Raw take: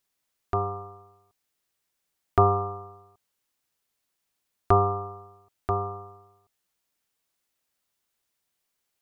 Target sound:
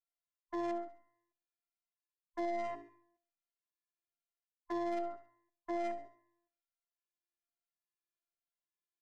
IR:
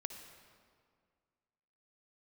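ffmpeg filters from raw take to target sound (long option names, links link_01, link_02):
-filter_complex "[0:a]afftfilt=real='real(if(between(b,1,1008),(2*floor((b-1)/48)+1)*48-b,b),0)':imag='imag(if(between(b,1,1008),(2*floor((b-1)/48)+1)*48-b,b),0)*if(between(b,1,1008),-1,1)':win_size=2048:overlap=0.75,bandreject=frequency=50:width_type=h:width=6,bandreject=frequency=100:width_type=h:width=6,bandreject=frequency=150:width_type=h:width=6,afwtdn=0.0251,lowpass=frequency=2300:poles=1,equalizer=frequency=1500:width_type=o:width=0.76:gain=2.5,areverse,acompressor=threshold=-32dB:ratio=16,areverse,afftfilt=real='hypot(re,im)*cos(PI*b)':imag='0':win_size=512:overlap=0.75,acontrast=43,aeval=exprs='0.0794*(cos(1*acos(clip(val(0)/0.0794,-1,1)))-cos(1*PI/2))+0.00708*(cos(2*acos(clip(val(0)/0.0794,-1,1)))-cos(2*PI/2))+0.000708*(cos(3*acos(clip(val(0)/0.0794,-1,1)))-cos(3*PI/2))+0.00631*(cos(5*acos(clip(val(0)/0.0794,-1,1)))-cos(5*PI/2))+0.00224*(cos(7*acos(clip(val(0)/0.0794,-1,1)))-cos(7*PI/2))':channel_layout=same,asplit=2[link_01][link_02];[link_02]aecho=0:1:68|136|204|272:0.224|0.0895|0.0358|0.0143[link_03];[link_01][link_03]amix=inputs=2:normalize=0,asplit=2[link_04][link_05];[link_05]adelay=9.6,afreqshift=-1.2[link_06];[link_04][link_06]amix=inputs=2:normalize=1,volume=-2.5dB"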